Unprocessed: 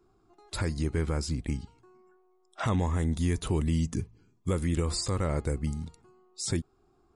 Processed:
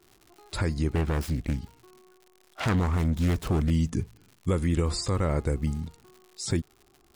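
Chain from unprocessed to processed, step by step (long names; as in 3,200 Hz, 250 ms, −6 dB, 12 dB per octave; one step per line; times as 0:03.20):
0:00.95–0:03.71: phase distortion by the signal itself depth 0.41 ms
high-shelf EQ 6,600 Hz −7.5 dB
surface crackle 150 per second −45 dBFS
level +3 dB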